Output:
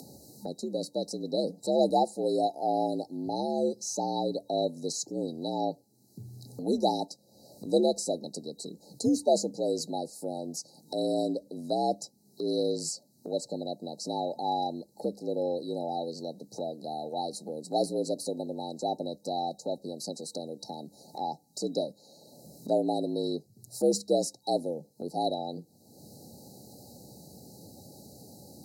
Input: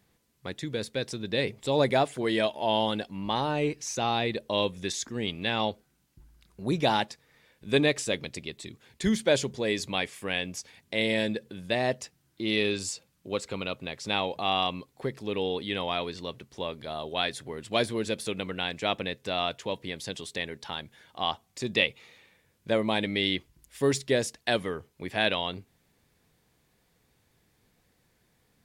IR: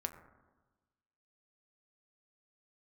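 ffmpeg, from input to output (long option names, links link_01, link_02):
-af "afftfilt=real='re*(1-between(b*sr/4096,810,3800))':imag='im*(1-between(b*sr/4096,810,3800))':win_size=4096:overlap=0.75,afreqshift=68,acompressor=mode=upward:threshold=-33dB:ratio=2.5"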